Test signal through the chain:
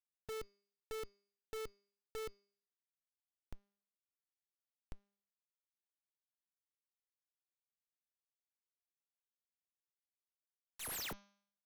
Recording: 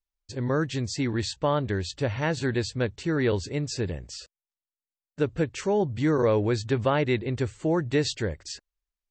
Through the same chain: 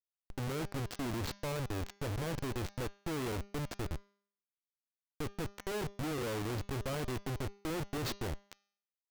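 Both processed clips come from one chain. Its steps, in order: added harmonics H 2 -18 dB, 8 -21 dB, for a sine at -11.5 dBFS; Schmitt trigger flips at -29.5 dBFS; de-hum 201.1 Hz, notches 33; gain -8.5 dB

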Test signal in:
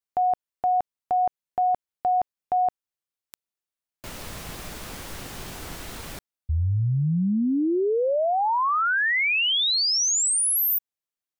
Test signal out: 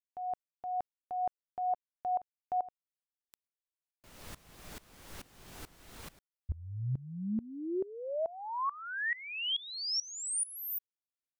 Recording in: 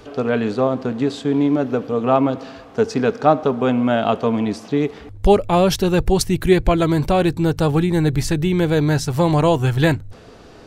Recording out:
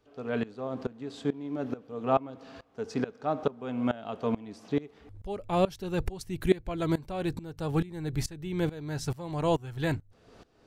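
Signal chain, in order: dB-ramp tremolo swelling 2.3 Hz, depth 21 dB; gain -7 dB

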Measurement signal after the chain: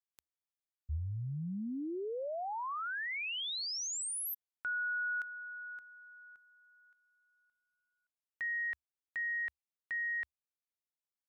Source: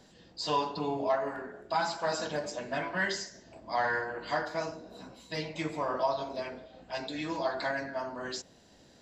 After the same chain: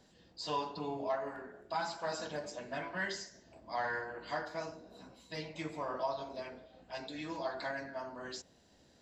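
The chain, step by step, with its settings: bell 72 Hz +5.5 dB 0.33 oct; gain -6.5 dB

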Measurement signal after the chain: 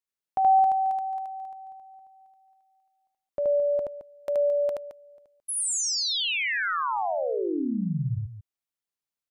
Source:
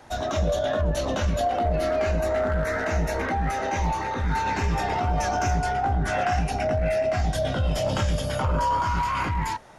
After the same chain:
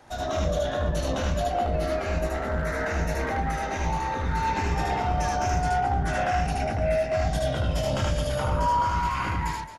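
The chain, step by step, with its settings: loudspeakers at several distances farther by 26 m -1 dB, 75 m -11 dB; gain -4 dB

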